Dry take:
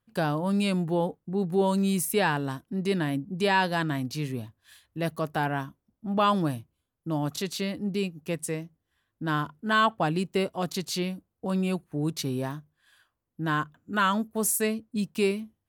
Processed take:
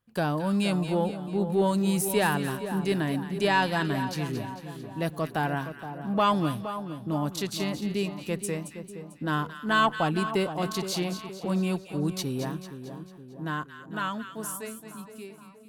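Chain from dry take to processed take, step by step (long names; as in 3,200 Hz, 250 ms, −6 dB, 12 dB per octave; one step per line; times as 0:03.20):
fade-out on the ending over 3.70 s
harmonic generator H 4 −28 dB, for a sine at −11 dBFS
echo with a time of its own for lows and highs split 1,200 Hz, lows 469 ms, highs 223 ms, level −10 dB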